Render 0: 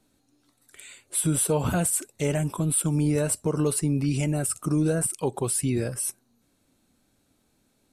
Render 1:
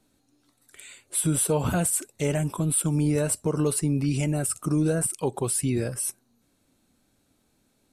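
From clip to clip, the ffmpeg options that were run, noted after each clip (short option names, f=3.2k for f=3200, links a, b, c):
-af anull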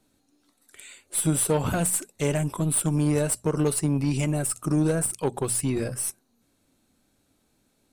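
-af "bandreject=f=60:t=h:w=6,bandreject=f=120:t=h:w=6,bandreject=f=180:t=h:w=6,bandreject=f=240:t=h:w=6,aeval=exprs='0.266*(cos(1*acos(clip(val(0)/0.266,-1,1)))-cos(1*PI/2))+0.0596*(cos(2*acos(clip(val(0)/0.266,-1,1)))-cos(2*PI/2))+0.0133*(cos(8*acos(clip(val(0)/0.266,-1,1)))-cos(8*PI/2))':c=same"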